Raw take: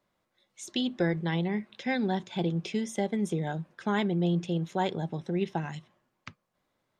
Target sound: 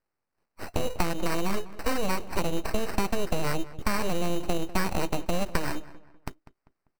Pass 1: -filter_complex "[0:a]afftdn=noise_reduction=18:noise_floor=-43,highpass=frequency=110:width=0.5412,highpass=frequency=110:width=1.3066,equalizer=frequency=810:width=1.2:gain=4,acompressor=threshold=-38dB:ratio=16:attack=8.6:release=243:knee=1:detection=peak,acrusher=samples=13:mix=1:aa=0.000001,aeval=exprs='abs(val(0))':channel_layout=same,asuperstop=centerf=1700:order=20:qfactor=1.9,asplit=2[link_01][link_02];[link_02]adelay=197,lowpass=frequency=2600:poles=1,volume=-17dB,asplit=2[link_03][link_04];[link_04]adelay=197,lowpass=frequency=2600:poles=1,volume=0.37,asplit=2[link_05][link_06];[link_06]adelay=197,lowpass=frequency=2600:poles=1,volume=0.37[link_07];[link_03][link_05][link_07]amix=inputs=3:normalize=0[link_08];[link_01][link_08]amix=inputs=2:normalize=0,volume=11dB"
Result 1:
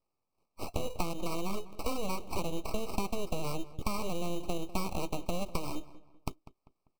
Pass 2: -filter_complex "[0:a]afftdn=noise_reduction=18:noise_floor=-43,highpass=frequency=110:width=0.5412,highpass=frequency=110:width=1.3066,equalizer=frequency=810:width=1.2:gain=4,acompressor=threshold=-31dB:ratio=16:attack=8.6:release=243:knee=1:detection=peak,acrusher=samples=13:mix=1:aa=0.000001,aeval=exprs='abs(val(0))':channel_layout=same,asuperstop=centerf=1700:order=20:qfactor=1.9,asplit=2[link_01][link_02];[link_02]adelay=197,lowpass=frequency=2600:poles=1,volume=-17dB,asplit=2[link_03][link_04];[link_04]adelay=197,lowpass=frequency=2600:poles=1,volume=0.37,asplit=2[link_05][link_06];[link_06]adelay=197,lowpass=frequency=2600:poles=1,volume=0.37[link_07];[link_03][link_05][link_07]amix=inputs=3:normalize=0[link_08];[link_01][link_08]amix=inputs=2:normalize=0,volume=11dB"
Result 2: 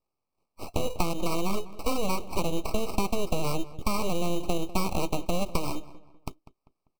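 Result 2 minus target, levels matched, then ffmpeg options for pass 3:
2,000 Hz band −5.0 dB
-filter_complex "[0:a]afftdn=noise_reduction=18:noise_floor=-43,highpass=frequency=110:width=0.5412,highpass=frequency=110:width=1.3066,equalizer=frequency=810:width=1.2:gain=4,acompressor=threshold=-31dB:ratio=16:attack=8.6:release=243:knee=1:detection=peak,acrusher=samples=13:mix=1:aa=0.000001,aeval=exprs='abs(val(0))':channel_layout=same,asplit=2[link_01][link_02];[link_02]adelay=197,lowpass=frequency=2600:poles=1,volume=-17dB,asplit=2[link_03][link_04];[link_04]adelay=197,lowpass=frequency=2600:poles=1,volume=0.37,asplit=2[link_05][link_06];[link_06]adelay=197,lowpass=frequency=2600:poles=1,volume=0.37[link_07];[link_03][link_05][link_07]amix=inputs=3:normalize=0[link_08];[link_01][link_08]amix=inputs=2:normalize=0,volume=11dB"

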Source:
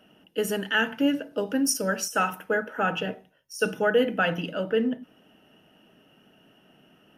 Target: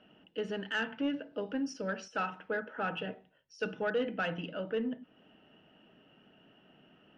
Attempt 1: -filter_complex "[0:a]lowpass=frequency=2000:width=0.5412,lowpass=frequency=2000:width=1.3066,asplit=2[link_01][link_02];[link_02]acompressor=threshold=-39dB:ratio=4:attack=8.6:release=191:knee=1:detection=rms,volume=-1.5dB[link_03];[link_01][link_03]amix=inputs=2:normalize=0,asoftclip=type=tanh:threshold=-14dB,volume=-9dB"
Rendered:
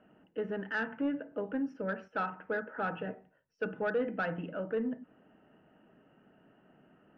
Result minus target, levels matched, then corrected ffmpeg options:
4,000 Hz band −11.5 dB; downward compressor: peak gain reduction −6.5 dB
-filter_complex "[0:a]lowpass=frequency=4200:width=0.5412,lowpass=frequency=4200:width=1.3066,asplit=2[link_01][link_02];[link_02]acompressor=threshold=-47.5dB:ratio=4:attack=8.6:release=191:knee=1:detection=rms,volume=-1.5dB[link_03];[link_01][link_03]amix=inputs=2:normalize=0,asoftclip=type=tanh:threshold=-14dB,volume=-9dB"

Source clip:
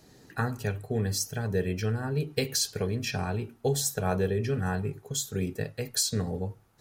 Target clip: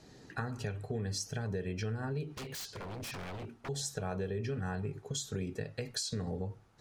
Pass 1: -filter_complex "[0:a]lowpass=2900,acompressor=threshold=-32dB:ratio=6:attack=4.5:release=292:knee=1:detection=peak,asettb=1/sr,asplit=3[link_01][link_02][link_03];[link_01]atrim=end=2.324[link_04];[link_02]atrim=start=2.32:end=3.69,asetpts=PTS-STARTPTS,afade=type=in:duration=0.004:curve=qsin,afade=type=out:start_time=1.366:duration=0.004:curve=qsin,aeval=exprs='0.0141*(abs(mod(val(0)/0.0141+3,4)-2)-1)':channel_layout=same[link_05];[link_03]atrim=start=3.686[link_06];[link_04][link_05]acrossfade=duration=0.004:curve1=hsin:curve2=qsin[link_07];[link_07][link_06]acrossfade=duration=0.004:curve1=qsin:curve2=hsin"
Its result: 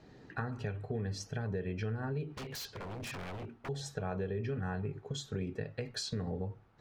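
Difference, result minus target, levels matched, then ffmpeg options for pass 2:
8,000 Hz band −6.5 dB
-filter_complex "[0:a]lowpass=7000,acompressor=threshold=-32dB:ratio=6:attack=4.5:release=292:knee=1:detection=peak,asettb=1/sr,asplit=3[link_01][link_02][link_03];[link_01]atrim=end=2.324[link_04];[link_02]atrim=start=2.32:end=3.69,asetpts=PTS-STARTPTS,afade=type=in:duration=0.004:curve=qsin,afade=type=out:start_time=1.366:duration=0.004:curve=qsin,aeval=exprs='0.0141*(abs(mod(val(0)/0.0141+3,4)-2)-1)':channel_layout=same[link_05];[link_03]atrim=start=3.686[link_06];[link_04][link_05]acrossfade=duration=0.004:curve1=hsin:curve2=qsin[link_07];[link_07][link_06]acrossfade=duration=0.004:curve1=qsin:curve2=hsin"

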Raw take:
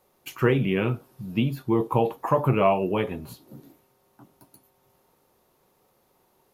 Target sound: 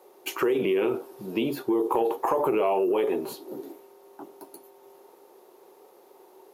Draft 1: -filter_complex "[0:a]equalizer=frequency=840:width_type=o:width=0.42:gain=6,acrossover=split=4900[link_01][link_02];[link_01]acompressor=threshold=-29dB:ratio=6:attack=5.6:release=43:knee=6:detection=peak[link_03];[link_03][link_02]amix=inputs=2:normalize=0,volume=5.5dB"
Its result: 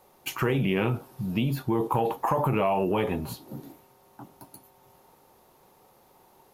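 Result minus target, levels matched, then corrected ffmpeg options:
500 Hz band −3.0 dB
-filter_complex "[0:a]highpass=frequency=380:width_type=q:width=4.2,equalizer=frequency=840:width_type=o:width=0.42:gain=6,acrossover=split=4900[link_01][link_02];[link_01]acompressor=threshold=-29dB:ratio=6:attack=5.6:release=43:knee=6:detection=peak[link_03];[link_03][link_02]amix=inputs=2:normalize=0,volume=5.5dB"

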